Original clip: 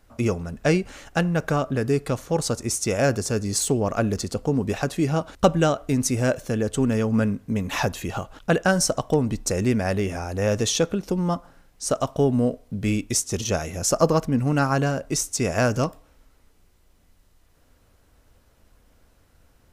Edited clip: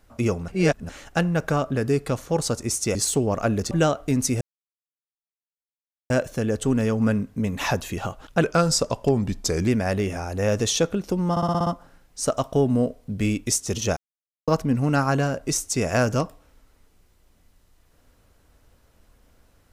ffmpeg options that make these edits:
-filter_complex "[0:a]asplit=16[a][b][c][d][e][f][g][h][i][j][k][l][m][n][o][p];[a]atrim=end=0.482[q];[b]atrim=start=0.478:end=0.892,asetpts=PTS-STARTPTS,areverse[r];[c]atrim=start=0.888:end=2.952[s];[d]atrim=start=3.488:end=4.252[t];[e]atrim=start=5.518:end=6.22,asetpts=PTS-STARTPTS,afade=t=out:st=0.698:d=0.004:c=hsin,apad=pad_dur=1.69[u];[f]atrim=start=6.22:end=8.544,asetpts=PTS-STARTPTS,afade=t=in:d=0.004:c=hsin[v];[g]atrim=start=8.54:end=9.67,asetpts=PTS-STARTPTS,asetrate=39690,aresample=44100[w];[h]atrim=start=9.666:end=11.362[x];[i]atrim=start=11.298:end=11.362[y];[j]atrim=start=11.298:end=11.362[z];[k]atrim=start=11.298:end=11.362[aa];[l]atrim=start=11.298:end=11.362[ab];[m]atrim=start=11.298:end=11.362[ac];[n]atrim=start=11.298:end=13.6,asetpts=PTS-STARTPTS,afade=t=out:st=2.298:d=0.004:c=hsin[ad];[o]atrim=start=13.6:end=14.11,asetpts=PTS-STARTPTS,volume=0[ae];[p]atrim=start=14.11,asetpts=PTS-STARTPTS,afade=t=in:d=0.004:c=hsin[af];[q][r]acrossfade=d=0.004:c1=hsin:c2=hsin[ag];[ag][s]acrossfade=d=0.004:c1=hsin:c2=hsin[ah];[ah][t]acrossfade=d=0.004:c1=hsin:c2=hsin[ai];[u][v]concat=n=2:v=0:a=1[aj];[ai][aj]acrossfade=d=0.004:c1=hsin:c2=hsin[ak];[ak][w]acrossfade=d=0.004:c1=hsin:c2=hsin[al];[al][x]acrossfade=d=0.004:c1=hsin:c2=hsin[am];[am][y]acrossfade=d=0.004:c1=hsin:c2=hsin[an];[an][z]acrossfade=d=0.004:c1=hsin:c2=hsin[ao];[ao][aa]acrossfade=d=0.004:c1=hsin:c2=hsin[ap];[ap][ab]acrossfade=d=0.004:c1=hsin:c2=hsin[aq];[aq][ac]acrossfade=d=0.004:c1=hsin:c2=hsin[ar];[ad][ae][af]concat=n=3:v=0:a=1[as];[ar][as]acrossfade=d=0.004:c1=hsin:c2=hsin"

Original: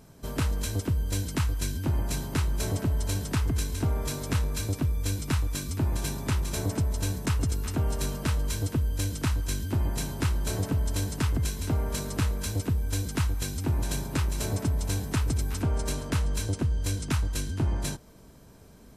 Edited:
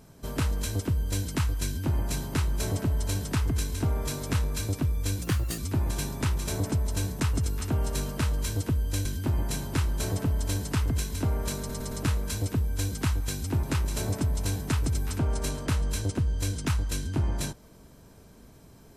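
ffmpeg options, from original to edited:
-filter_complex "[0:a]asplit=8[a][b][c][d][e][f][g][h];[a]atrim=end=5.224[i];[b]atrim=start=5.22:end=5.64,asetpts=PTS-STARTPTS,asetrate=51156,aresample=44100,atrim=end_sample=15967,asetpts=PTS-STARTPTS[j];[c]atrim=start=5.636:end=9.112[k];[d]atrim=start=9.518:end=12.162[l];[e]atrim=start=12.048:end=12.162[m];[f]atrim=start=12.048:end=12.162[n];[g]atrim=start=12.048:end=13.772[o];[h]atrim=start=14.068[p];[i][j]acrossfade=d=0.004:c1=hsin:c2=hsin[q];[q][k]acrossfade=d=0.004:c1=hsin:c2=hsin[r];[r][l]acrossfade=d=0.004:c1=hsin:c2=hsin[s];[s][m]acrossfade=d=0.004:c1=hsin:c2=hsin[t];[t][n]acrossfade=d=0.004:c1=hsin:c2=hsin[u];[u][o]acrossfade=d=0.004:c1=hsin:c2=hsin[v];[v][p]acrossfade=d=0.004:c1=hsin:c2=hsin"

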